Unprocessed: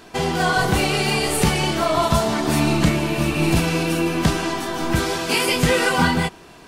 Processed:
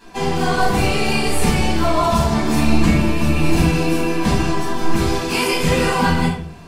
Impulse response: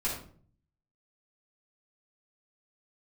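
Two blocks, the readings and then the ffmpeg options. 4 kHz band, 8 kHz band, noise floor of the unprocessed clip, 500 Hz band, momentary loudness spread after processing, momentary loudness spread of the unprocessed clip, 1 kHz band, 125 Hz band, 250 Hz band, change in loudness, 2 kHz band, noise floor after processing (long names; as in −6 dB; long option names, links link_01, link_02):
−1.0 dB, −1.5 dB, −44 dBFS, +1.0 dB, 4 LU, 5 LU, +2.0 dB, +2.5 dB, +3.0 dB, +1.5 dB, −1.0 dB, −32 dBFS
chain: -filter_complex "[1:a]atrim=start_sample=2205[link_01];[0:a][link_01]afir=irnorm=-1:irlink=0,volume=-5.5dB"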